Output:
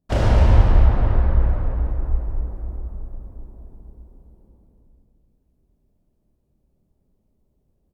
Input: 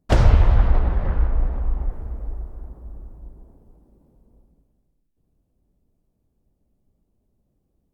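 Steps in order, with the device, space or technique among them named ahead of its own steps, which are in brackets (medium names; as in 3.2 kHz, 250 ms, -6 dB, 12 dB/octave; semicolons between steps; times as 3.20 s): cave (delay 259 ms -8.5 dB; reverberation RT60 2.7 s, pre-delay 22 ms, DRR -6 dB); trim -6.5 dB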